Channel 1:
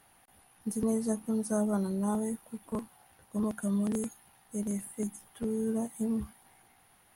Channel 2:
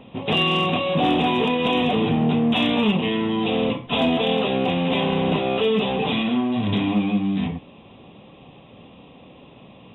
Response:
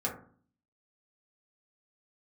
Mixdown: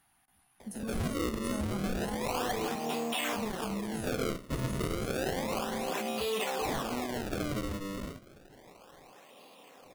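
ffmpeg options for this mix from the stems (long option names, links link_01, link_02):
-filter_complex "[0:a]equalizer=frequency=490:width_type=o:width=0.53:gain=-15,volume=-7.5dB,asplit=3[link_01][link_02][link_03];[link_02]volume=-17dB[link_04];[1:a]highpass=500,acrusher=samples=31:mix=1:aa=0.000001:lfo=1:lforange=49.6:lforate=0.31,adelay=600,volume=-4dB[link_05];[link_03]apad=whole_len=465091[link_06];[link_05][link_06]sidechaincompress=threshold=-42dB:ratio=8:attack=16:release=315[link_07];[2:a]atrim=start_sample=2205[link_08];[link_04][link_08]afir=irnorm=-1:irlink=0[link_09];[link_01][link_07][link_09]amix=inputs=3:normalize=0,alimiter=limit=-24dB:level=0:latency=1:release=136"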